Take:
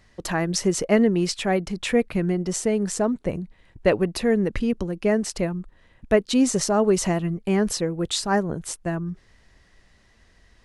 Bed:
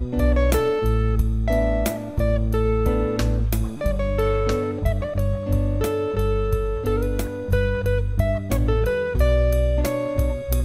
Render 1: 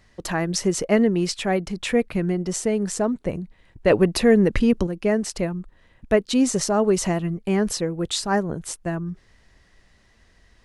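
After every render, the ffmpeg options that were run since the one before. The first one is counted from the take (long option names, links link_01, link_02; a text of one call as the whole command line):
ffmpeg -i in.wav -filter_complex "[0:a]asettb=1/sr,asplit=3[link_01][link_02][link_03];[link_01]atrim=end=3.904[link_04];[link_02]atrim=start=3.9:end=4.87,asetpts=PTS-STARTPTS,afade=type=in:duration=0.004:curve=qsin,afade=type=out:start_time=0.966:duration=0.004:curve=qsin,acontrast=36[link_05];[link_03]atrim=start=4.866[link_06];[link_04][link_05]acrossfade=duration=0.004:curve1=hsin:curve2=qsin[link_07];[link_07][link_06]acrossfade=duration=0.004:curve1=qsin:curve2=hsin" out.wav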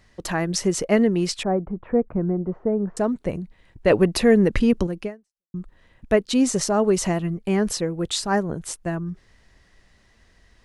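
ffmpeg -i in.wav -filter_complex "[0:a]asettb=1/sr,asplit=3[link_01][link_02][link_03];[link_01]atrim=end=1.434[link_04];[link_02]atrim=start=1.43:end=2.97,asetpts=PTS-STARTPTS,afade=type=in:duration=0.004:curve=qsin,afade=type=out:start_time=1.536:duration=0.004:curve=qsin,lowpass=frequency=1200:width=0.5412,lowpass=frequency=1200:width=1.3066[link_05];[link_03]atrim=start=2.966[link_06];[link_04][link_05]acrossfade=duration=0.004:curve1=hsin:curve2=qsin[link_07];[link_07][link_06]acrossfade=duration=0.004:curve1=qsin:curve2=hsin,asplit=2[link_08][link_09];[link_08]atrim=end=5.54,asetpts=PTS-STARTPTS,afade=type=out:start_time=5.03:duration=0.51:curve=exp[link_10];[link_09]atrim=start=5.54,asetpts=PTS-STARTPTS,afade=type=in:duration=0.004:curve=hsin[link_11];[link_10][link_11]concat=n=2:v=0:a=1" out.wav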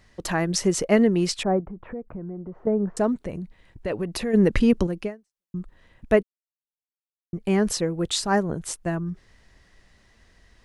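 ffmpeg -i in.wav -filter_complex "[0:a]asettb=1/sr,asplit=3[link_01][link_02][link_03];[link_01]atrim=end=1.604[link_04];[link_02]atrim=start=1.6:end=2.67,asetpts=PTS-STARTPTS,afade=type=in:duration=0.004:curve=qsin,afade=type=out:start_time=1.066:duration=0.004:curve=qsin,acompressor=threshold=-35dB:ratio=3:attack=3.2:release=140:knee=1:detection=peak[link_05];[link_03]atrim=start=2.666[link_06];[link_04][link_05]acrossfade=duration=0.004:curve1=hsin:curve2=qsin[link_07];[link_07][link_06]acrossfade=duration=0.004:curve1=qsin:curve2=hsin,asplit=3[link_08][link_09][link_10];[link_08]afade=type=out:start_time=3.2:duration=0.02[link_11];[link_09]acompressor=threshold=-29dB:ratio=2.5:attack=3.2:release=140:knee=1:detection=peak,afade=type=in:start_time=3.2:duration=0.02,afade=type=out:start_time=4.33:duration=0.02[link_12];[link_10]afade=type=in:start_time=4.33:duration=0.02[link_13];[link_11][link_12][link_13]amix=inputs=3:normalize=0,asplit=3[link_14][link_15][link_16];[link_14]atrim=end=6.23,asetpts=PTS-STARTPTS,afade=type=out:start_time=6.226:duration=0.004:curve=hsin[link_17];[link_15]atrim=start=6.23:end=7.33,asetpts=PTS-STARTPTS,volume=0[link_18];[link_16]atrim=start=7.33,asetpts=PTS-STARTPTS,afade=type=in:duration=0.004:curve=hsin[link_19];[link_17][link_18][link_19]concat=n=3:v=0:a=1" out.wav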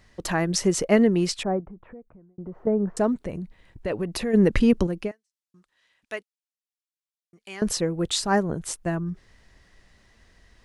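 ffmpeg -i in.wav -filter_complex "[0:a]asettb=1/sr,asplit=3[link_01][link_02][link_03];[link_01]atrim=end=5.114[link_04];[link_02]atrim=start=5.11:end=7.62,asetpts=PTS-STARTPTS,afade=type=in:duration=0.004:curve=qsin,afade=type=out:start_time=2.506:duration=0.004:curve=qsin,bandpass=frequency=5400:width_type=q:width=0.65[link_05];[link_03]atrim=start=7.616[link_06];[link_04][link_05]acrossfade=duration=0.004:curve1=hsin:curve2=qsin[link_07];[link_07][link_06]acrossfade=duration=0.004:curve1=qsin:curve2=hsin,asplit=2[link_08][link_09];[link_08]atrim=end=2.38,asetpts=PTS-STARTPTS,afade=type=out:start_time=1.16:duration=1.22[link_10];[link_09]atrim=start=2.38,asetpts=PTS-STARTPTS,afade=type=in:duration=0.004:curve=hsin[link_11];[link_10][link_11]concat=n=2:v=0:a=1" out.wav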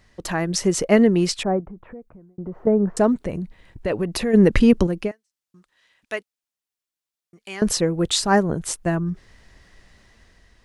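ffmpeg -i in.wav -af "dynaudnorm=framelen=200:gausssize=7:maxgain=5dB" out.wav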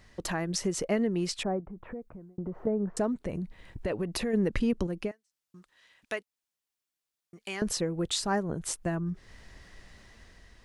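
ffmpeg -i in.wav -af "acompressor=threshold=-35dB:ratio=2" out.wav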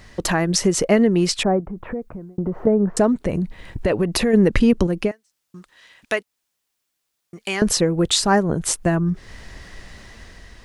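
ffmpeg -i in.wav -af "volume=12dB" out.wav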